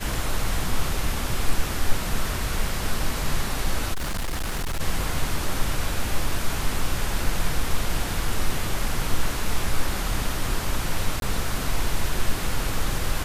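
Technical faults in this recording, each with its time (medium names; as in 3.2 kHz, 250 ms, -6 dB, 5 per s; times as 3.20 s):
3.93–4.81 s: clipped -23 dBFS
11.20–11.22 s: dropout 22 ms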